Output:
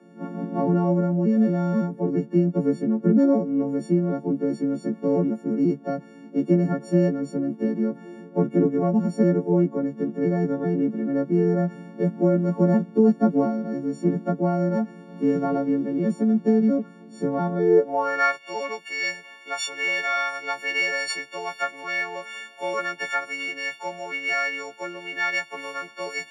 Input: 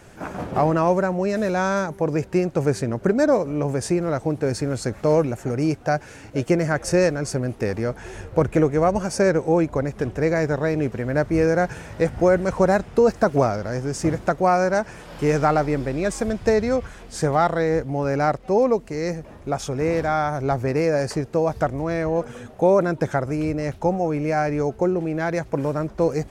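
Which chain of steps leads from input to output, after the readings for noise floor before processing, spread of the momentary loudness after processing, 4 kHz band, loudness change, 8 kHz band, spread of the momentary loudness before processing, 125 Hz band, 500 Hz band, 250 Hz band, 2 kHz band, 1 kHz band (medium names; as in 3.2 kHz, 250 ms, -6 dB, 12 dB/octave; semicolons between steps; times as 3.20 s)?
-43 dBFS, 11 LU, +2.5 dB, -1.5 dB, no reading, 7 LU, -2.0 dB, -5.0 dB, +2.0 dB, +1.5 dB, -6.0 dB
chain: partials quantised in pitch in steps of 4 st; band-pass sweep 220 Hz -> 2.4 kHz, 17.55–18.34 s; steep high-pass 150 Hz 96 dB/octave; trim +7.5 dB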